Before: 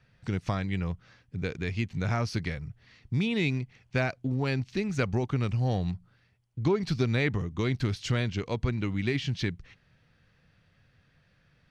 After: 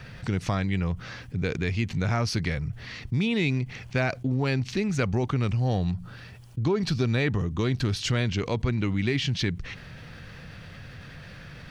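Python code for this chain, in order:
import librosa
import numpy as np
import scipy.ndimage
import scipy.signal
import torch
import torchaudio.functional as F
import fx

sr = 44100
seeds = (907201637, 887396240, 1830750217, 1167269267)

y = fx.notch(x, sr, hz=2100.0, q=11.0, at=(5.67, 8.06))
y = fx.env_flatten(y, sr, amount_pct=50)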